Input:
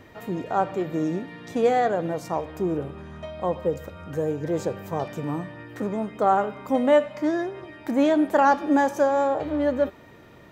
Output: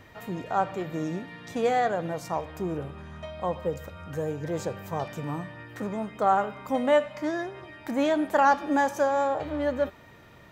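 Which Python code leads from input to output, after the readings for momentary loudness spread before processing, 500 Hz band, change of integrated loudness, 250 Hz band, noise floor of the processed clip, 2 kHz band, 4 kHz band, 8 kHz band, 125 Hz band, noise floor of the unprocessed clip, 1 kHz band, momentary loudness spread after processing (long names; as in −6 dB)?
13 LU, −4.0 dB, −3.5 dB, −5.5 dB, −51 dBFS, −0.5 dB, 0.0 dB, 0.0 dB, −2.0 dB, −49 dBFS, −2.0 dB, 13 LU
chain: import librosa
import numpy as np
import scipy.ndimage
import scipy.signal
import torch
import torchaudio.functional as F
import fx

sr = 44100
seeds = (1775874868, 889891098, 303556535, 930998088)

y = fx.peak_eq(x, sr, hz=340.0, db=-6.5, octaves=1.7)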